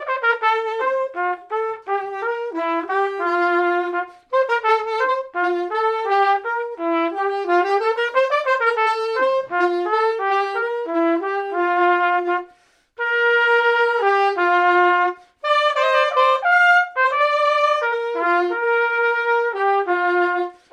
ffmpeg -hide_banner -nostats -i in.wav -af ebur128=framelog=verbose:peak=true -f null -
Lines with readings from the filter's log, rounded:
Integrated loudness:
  I:         -18.8 LUFS
  Threshold: -28.9 LUFS
Loudness range:
  LRA:         4.8 LU
  Threshold: -38.7 LUFS
  LRA low:   -21.1 LUFS
  LRA high:  -16.4 LUFS
True peak:
  Peak:       -3.9 dBFS